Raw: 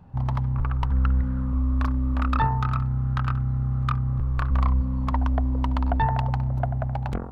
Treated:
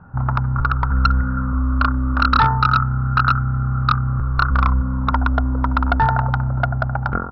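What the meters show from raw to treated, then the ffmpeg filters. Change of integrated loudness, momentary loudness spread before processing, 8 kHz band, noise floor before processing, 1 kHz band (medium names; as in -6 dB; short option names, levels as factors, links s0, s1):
+6.5 dB, 3 LU, no reading, -28 dBFS, +10.5 dB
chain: -af "lowpass=f=1400:t=q:w=14,aresample=11025,asoftclip=type=hard:threshold=0.282,aresample=44100,equalizer=f=180:w=0.34:g=3,volume=1.26"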